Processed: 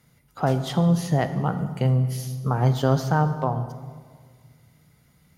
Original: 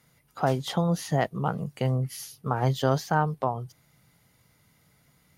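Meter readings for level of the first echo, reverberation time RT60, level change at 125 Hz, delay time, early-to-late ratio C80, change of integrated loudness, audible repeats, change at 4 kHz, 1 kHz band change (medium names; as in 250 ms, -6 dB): no echo, 1.8 s, +6.0 dB, no echo, 12.0 dB, +4.0 dB, no echo, +0.5 dB, +1.0 dB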